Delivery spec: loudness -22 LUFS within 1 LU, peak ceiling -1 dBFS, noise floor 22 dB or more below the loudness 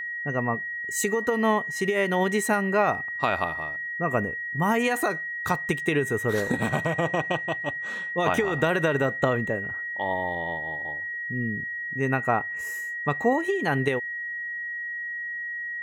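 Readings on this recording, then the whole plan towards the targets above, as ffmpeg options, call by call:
steady tone 1900 Hz; tone level -30 dBFS; loudness -26.5 LUFS; peak -9.0 dBFS; loudness target -22.0 LUFS
-> -af "bandreject=f=1.9k:w=30"
-af "volume=4.5dB"

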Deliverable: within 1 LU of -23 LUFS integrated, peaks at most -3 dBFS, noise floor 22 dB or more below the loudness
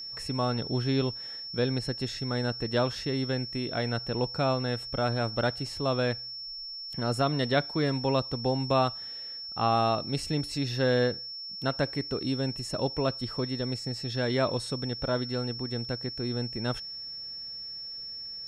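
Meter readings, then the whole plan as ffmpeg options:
steady tone 5400 Hz; tone level -37 dBFS; loudness -30.0 LUFS; peak -11.0 dBFS; loudness target -23.0 LUFS
-> -af "bandreject=f=5.4k:w=30"
-af "volume=7dB"

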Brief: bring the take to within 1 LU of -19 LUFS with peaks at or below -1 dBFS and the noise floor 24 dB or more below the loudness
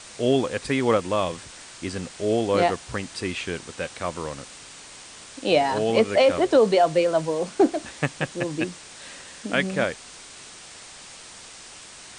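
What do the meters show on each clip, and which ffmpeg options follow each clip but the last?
noise floor -44 dBFS; noise floor target -48 dBFS; loudness -23.5 LUFS; peak -8.0 dBFS; loudness target -19.0 LUFS
-> -af "afftdn=nr=6:nf=-44"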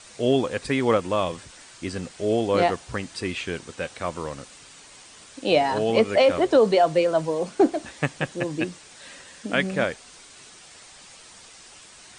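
noise floor -48 dBFS; loudness -23.5 LUFS; peak -8.0 dBFS; loudness target -19.0 LUFS
-> -af "volume=4.5dB"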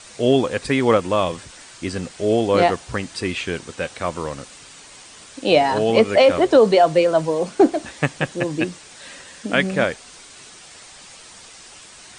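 loudness -19.0 LUFS; peak -3.5 dBFS; noise floor -43 dBFS

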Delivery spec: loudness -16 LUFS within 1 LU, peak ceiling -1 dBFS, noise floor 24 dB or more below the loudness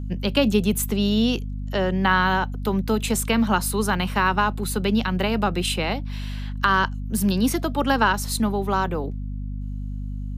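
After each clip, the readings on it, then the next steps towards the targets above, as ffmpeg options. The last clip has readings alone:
hum 50 Hz; harmonics up to 250 Hz; hum level -27 dBFS; loudness -22.5 LUFS; peak -4.5 dBFS; loudness target -16.0 LUFS
-> -af "bandreject=f=50:t=h:w=6,bandreject=f=100:t=h:w=6,bandreject=f=150:t=h:w=6,bandreject=f=200:t=h:w=6,bandreject=f=250:t=h:w=6"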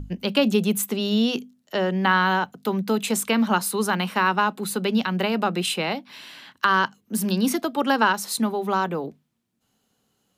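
hum none; loudness -23.0 LUFS; peak -5.0 dBFS; loudness target -16.0 LUFS
-> -af "volume=7dB,alimiter=limit=-1dB:level=0:latency=1"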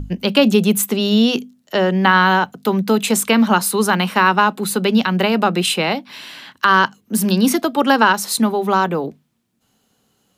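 loudness -16.0 LUFS; peak -1.0 dBFS; noise floor -65 dBFS

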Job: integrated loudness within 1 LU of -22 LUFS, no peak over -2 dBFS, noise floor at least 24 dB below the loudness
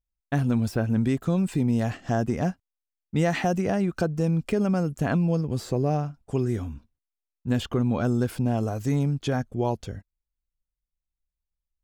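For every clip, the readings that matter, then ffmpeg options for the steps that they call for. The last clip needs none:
loudness -26.0 LUFS; peak -11.0 dBFS; loudness target -22.0 LUFS
-> -af "volume=4dB"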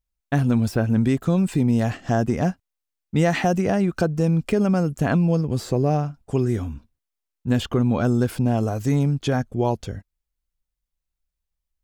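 loudness -22.0 LUFS; peak -7.0 dBFS; noise floor -83 dBFS

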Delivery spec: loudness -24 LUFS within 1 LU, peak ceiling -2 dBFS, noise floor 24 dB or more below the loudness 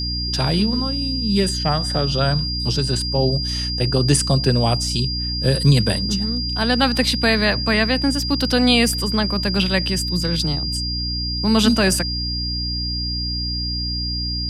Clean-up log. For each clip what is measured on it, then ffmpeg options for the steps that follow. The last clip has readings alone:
hum 60 Hz; harmonics up to 300 Hz; hum level -24 dBFS; steady tone 4800 Hz; tone level -24 dBFS; loudness -19.0 LUFS; peak -3.0 dBFS; loudness target -24.0 LUFS
-> -af "bandreject=f=60:t=h:w=6,bandreject=f=120:t=h:w=6,bandreject=f=180:t=h:w=6,bandreject=f=240:t=h:w=6,bandreject=f=300:t=h:w=6"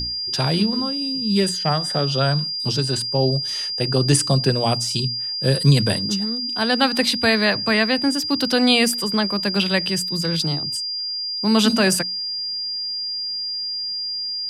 hum none; steady tone 4800 Hz; tone level -24 dBFS
-> -af "bandreject=f=4.8k:w=30"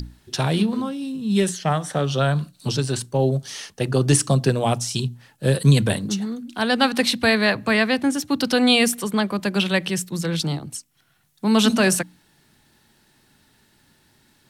steady tone none; loudness -21.0 LUFS; peak -3.5 dBFS; loudness target -24.0 LUFS
-> -af "volume=-3dB"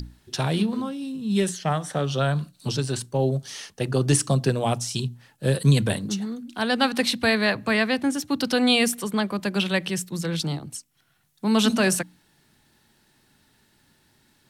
loudness -24.0 LUFS; peak -6.5 dBFS; noise floor -64 dBFS

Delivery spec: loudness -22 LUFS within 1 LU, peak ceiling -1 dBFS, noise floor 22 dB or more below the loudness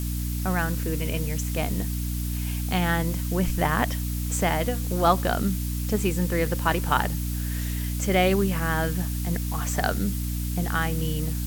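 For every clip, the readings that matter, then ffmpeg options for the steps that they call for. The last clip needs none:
hum 60 Hz; harmonics up to 300 Hz; hum level -26 dBFS; noise floor -28 dBFS; noise floor target -48 dBFS; loudness -26.0 LUFS; peak -6.0 dBFS; loudness target -22.0 LUFS
-> -af "bandreject=f=60:t=h:w=4,bandreject=f=120:t=h:w=4,bandreject=f=180:t=h:w=4,bandreject=f=240:t=h:w=4,bandreject=f=300:t=h:w=4"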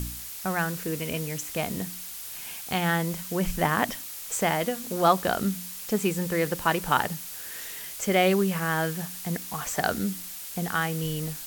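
hum none; noise floor -39 dBFS; noise floor target -50 dBFS
-> -af "afftdn=nr=11:nf=-39"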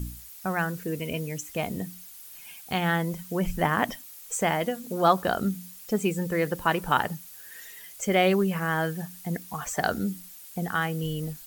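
noise floor -46 dBFS; noise floor target -50 dBFS
-> -af "afftdn=nr=6:nf=-46"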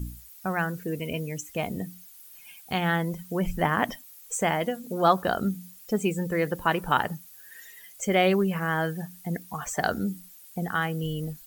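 noise floor -50 dBFS; loudness -28.0 LUFS; peak -6.0 dBFS; loudness target -22.0 LUFS
-> -af "volume=6dB,alimiter=limit=-1dB:level=0:latency=1"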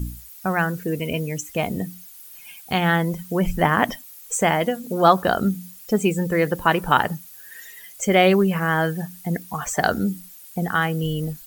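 loudness -22.0 LUFS; peak -1.0 dBFS; noise floor -44 dBFS

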